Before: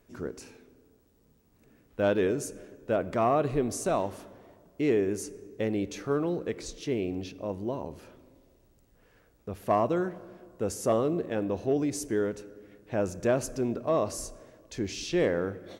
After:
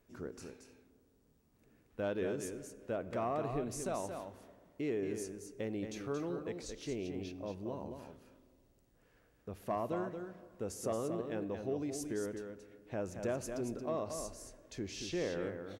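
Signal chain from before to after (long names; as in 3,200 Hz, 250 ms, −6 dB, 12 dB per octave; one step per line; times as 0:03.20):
downward compressor 1.5 to 1, threshold −33 dBFS, peak gain reduction 5 dB
on a send: single-tap delay 227 ms −6.5 dB
on the sum: level −7 dB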